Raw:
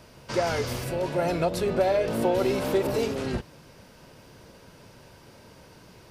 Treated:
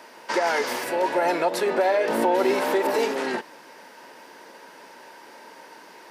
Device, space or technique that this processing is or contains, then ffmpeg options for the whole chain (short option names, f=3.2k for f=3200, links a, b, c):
laptop speaker: -filter_complex "[0:a]highpass=f=270:w=0.5412,highpass=f=270:w=1.3066,equalizer=f=900:t=o:w=0.33:g=10,equalizer=f=1.8k:t=o:w=0.53:g=9,alimiter=limit=-16.5dB:level=0:latency=1:release=81,asettb=1/sr,asplit=3[a][b][c];[a]atrim=end=2.094[d];[b]atrim=start=2.09:end=2.54,asetpts=PTS-STARTPTS,afade=t=in:d=0.004:c=qsin,afade=t=out:st=0.446:d=0.004:c=qsin,lowshelf=f=180:g=10.5[e];[c]atrim=start=2.536[f];[d][e]acrossfade=d=0.004:c1=hsin:c2=qsin[g];[g][f]acrossfade=d=0.004:c1=qsin:c2=hsin,volume=3.5dB"